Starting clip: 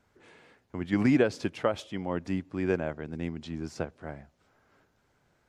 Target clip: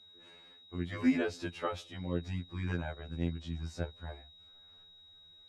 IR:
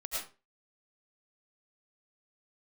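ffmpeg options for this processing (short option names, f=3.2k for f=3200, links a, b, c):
-af "asubboost=boost=3.5:cutoff=110,aeval=exprs='val(0)+0.00224*sin(2*PI*3800*n/s)':c=same,afftfilt=real='re*2*eq(mod(b,4),0)':imag='im*2*eq(mod(b,4),0)':win_size=2048:overlap=0.75,volume=-3dB"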